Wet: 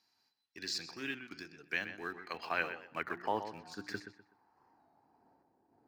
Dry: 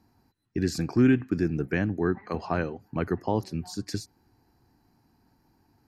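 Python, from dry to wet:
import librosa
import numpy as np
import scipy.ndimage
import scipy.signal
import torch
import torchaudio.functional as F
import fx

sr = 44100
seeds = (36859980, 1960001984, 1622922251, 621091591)

p1 = fx.filter_sweep_bandpass(x, sr, from_hz=4100.0, to_hz=540.0, start_s=1.89, end_s=5.6, q=1.6)
p2 = fx.hum_notches(p1, sr, base_hz=60, count=6)
p3 = fx.tremolo_random(p2, sr, seeds[0], hz=3.5, depth_pct=55)
p4 = np.where(np.abs(p3) >= 10.0 ** (-49.0 / 20.0), p3, 0.0)
p5 = p3 + F.gain(torch.from_numpy(p4), -11.0).numpy()
p6 = fx.dynamic_eq(p5, sr, hz=8200.0, q=0.75, threshold_db=-60.0, ratio=4.0, max_db=-5)
p7 = p6 + fx.echo_filtered(p6, sr, ms=125, feedback_pct=29, hz=4000.0, wet_db=-10.0, dry=0)
p8 = fx.record_warp(p7, sr, rpm=33.33, depth_cents=100.0)
y = F.gain(torch.from_numpy(p8), 6.0).numpy()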